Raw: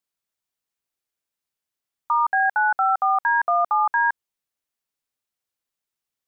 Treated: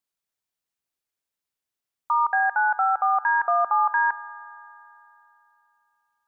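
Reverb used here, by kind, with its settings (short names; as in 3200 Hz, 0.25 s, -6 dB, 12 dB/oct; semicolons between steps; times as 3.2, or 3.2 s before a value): spring tank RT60 3.1 s, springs 55 ms, chirp 65 ms, DRR 19 dB; gain -1.5 dB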